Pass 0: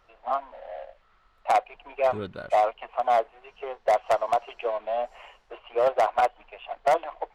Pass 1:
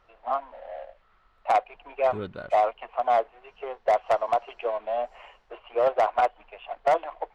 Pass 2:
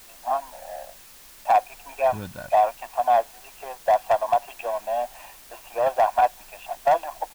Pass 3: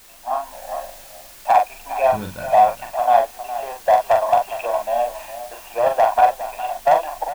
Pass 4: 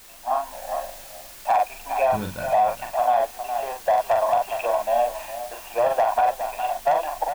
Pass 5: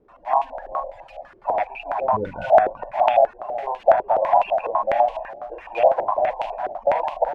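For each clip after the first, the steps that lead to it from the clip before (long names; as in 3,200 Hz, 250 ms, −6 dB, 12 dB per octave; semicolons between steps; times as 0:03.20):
high-shelf EQ 6,400 Hz −11 dB
comb filter 1.2 ms, depth 69%; bit-depth reduction 8 bits, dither triangular
double-tracking delay 43 ms −5 dB; single-tap delay 411 ms −13 dB; automatic gain control gain up to 4.5 dB
brickwall limiter −12 dBFS, peak gain reduction 8.5 dB
spectral magnitudes quantised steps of 30 dB; floating-point word with a short mantissa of 4 bits; low-pass on a step sequencer 12 Hz 390–2,700 Hz; level −2 dB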